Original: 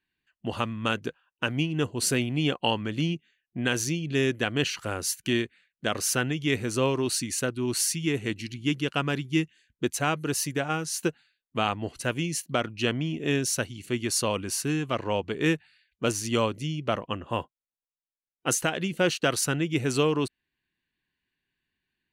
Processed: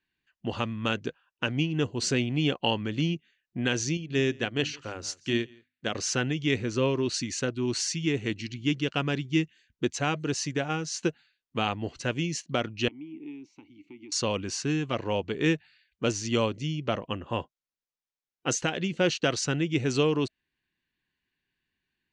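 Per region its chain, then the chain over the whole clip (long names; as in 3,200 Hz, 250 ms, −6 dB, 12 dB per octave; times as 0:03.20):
0:03.97–0:05.95: mains-hum notches 50/100/150/200/250/300 Hz + single-tap delay 168 ms −19 dB + expander for the loud parts, over −41 dBFS
0:06.61–0:07.14: high-shelf EQ 7,200 Hz −10.5 dB + notch filter 790 Hz, Q 6.8
0:12.88–0:14.12: downward compressor, threshold −30 dBFS + formant filter u
whole clip: Butterworth low-pass 7,000 Hz 36 dB per octave; notch filter 640 Hz, Q 20; dynamic equaliser 1,200 Hz, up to −4 dB, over −39 dBFS, Q 1.3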